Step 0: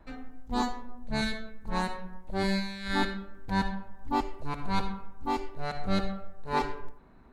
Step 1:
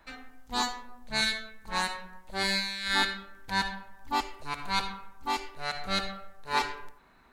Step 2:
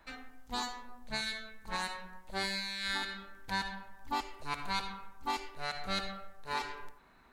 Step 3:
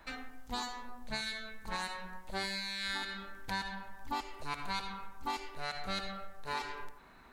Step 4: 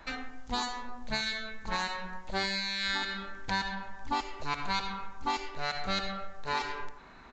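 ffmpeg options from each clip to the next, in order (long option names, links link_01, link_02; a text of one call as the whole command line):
ffmpeg -i in.wav -af "tiltshelf=frequency=860:gain=-9.5" out.wav
ffmpeg -i in.wav -af "alimiter=limit=-22dB:level=0:latency=1:release=245,volume=-2dB" out.wav
ffmpeg -i in.wav -af "acompressor=threshold=-43dB:ratio=2,volume=4.5dB" out.wav
ffmpeg -i in.wav -af "aresample=16000,aresample=44100,volume=5.5dB" out.wav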